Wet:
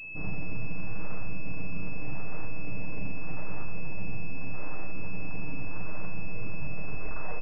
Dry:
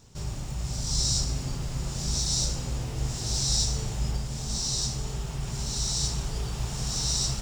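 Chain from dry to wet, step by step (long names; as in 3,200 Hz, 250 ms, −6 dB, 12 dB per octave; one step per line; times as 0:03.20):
turntable brake at the end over 0.96 s
full-wave rectification
high-frequency loss of the air 210 metres
comb filter 6.6 ms, depth 66%
four-comb reverb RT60 1 s, combs from 30 ms, DRR 5.5 dB
downward compressor, threshold −21 dBFS, peak gain reduction 9 dB
switching amplifier with a slow clock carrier 2,600 Hz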